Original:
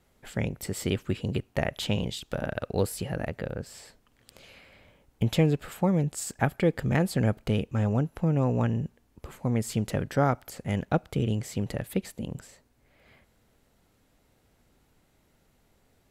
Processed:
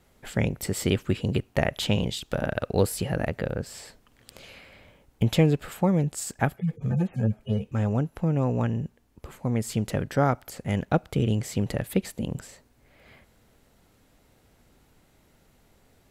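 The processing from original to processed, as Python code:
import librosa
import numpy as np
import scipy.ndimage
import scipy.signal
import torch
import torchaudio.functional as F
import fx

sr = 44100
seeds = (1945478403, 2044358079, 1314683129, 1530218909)

y = fx.hpss_only(x, sr, part='harmonic', at=(6.56, 7.72))
y = fx.rider(y, sr, range_db=3, speed_s=2.0)
y = y * 10.0 ** (2.0 / 20.0)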